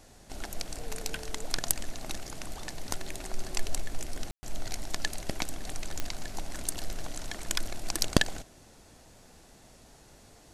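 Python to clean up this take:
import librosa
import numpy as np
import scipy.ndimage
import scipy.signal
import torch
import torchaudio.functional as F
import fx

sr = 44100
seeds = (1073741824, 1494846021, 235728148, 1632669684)

y = fx.fix_declick_ar(x, sr, threshold=10.0)
y = fx.fix_ambience(y, sr, seeds[0], print_start_s=9.96, print_end_s=10.46, start_s=4.31, end_s=4.43)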